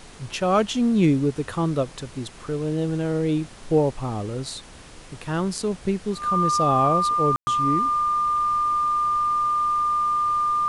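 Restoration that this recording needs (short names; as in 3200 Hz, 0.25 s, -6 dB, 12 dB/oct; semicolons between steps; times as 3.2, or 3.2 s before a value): notch 1200 Hz, Q 30; room tone fill 7.36–7.47; denoiser 25 dB, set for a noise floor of -43 dBFS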